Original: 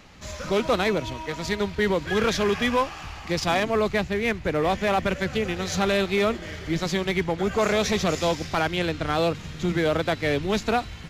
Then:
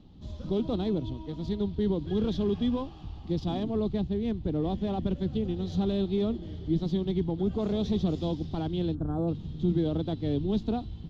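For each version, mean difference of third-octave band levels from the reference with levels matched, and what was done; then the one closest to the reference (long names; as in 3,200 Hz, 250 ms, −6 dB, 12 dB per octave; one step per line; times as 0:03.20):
11.0 dB: gain on a spectral selection 0:08.95–0:09.28, 1,700–7,000 Hz −24 dB
drawn EQ curve 320 Hz 0 dB, 560 Hz −14 dB, 800 Hz −12 dB, 1,500 Hz −26 dB, 2,300 Hz −29 dB, 3,400 Hz −10 dB, 7,500 Hz −30 dB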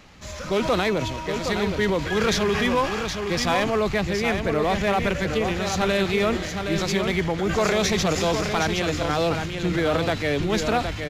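3.5 dB: transient designer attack 0 dB, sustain +7 dB
on a send: single-tap delay 767 ms −6.5 dB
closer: second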